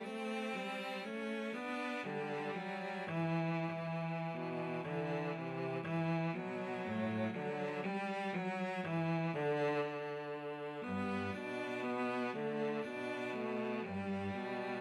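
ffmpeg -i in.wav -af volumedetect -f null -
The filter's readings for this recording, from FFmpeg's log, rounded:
mean_volume: -39.3 dB
max_volume: -26.0 dB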